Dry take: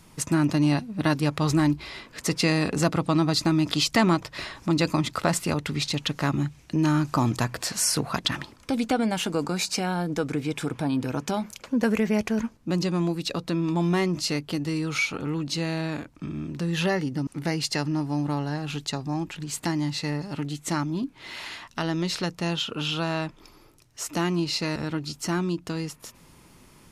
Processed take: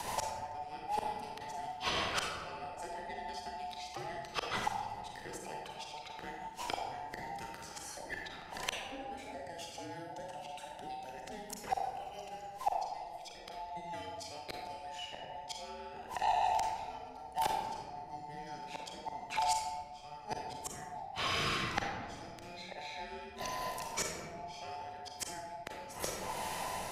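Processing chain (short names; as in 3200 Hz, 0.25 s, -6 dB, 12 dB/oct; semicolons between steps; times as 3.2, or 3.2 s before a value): band inversion scrambler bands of 1000 Hz; flipped gate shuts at -22 dBFS, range -38 dB; rotary speaker horn 6.3 Hz, later 1.1 Hz, at 17.69; reverb RT60 1.1 s, pre-delay 32 ms, DRR 0 dB; three-band squash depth 70%; gain +11.5 dB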